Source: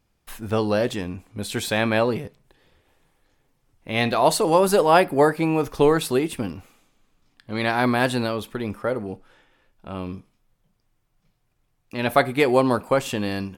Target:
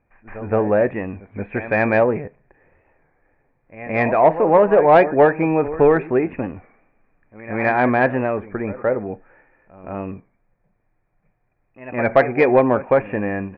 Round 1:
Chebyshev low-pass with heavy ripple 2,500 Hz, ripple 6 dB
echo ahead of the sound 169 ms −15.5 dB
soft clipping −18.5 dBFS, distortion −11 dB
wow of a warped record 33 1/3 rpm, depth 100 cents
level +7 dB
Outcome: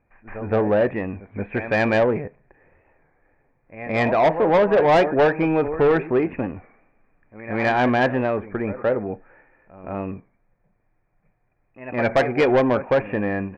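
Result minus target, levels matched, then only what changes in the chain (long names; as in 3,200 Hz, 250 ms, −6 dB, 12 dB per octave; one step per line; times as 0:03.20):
soft clipping: distortion +11 dB
change: soft clipping −9 dBFS, distortion −22 dB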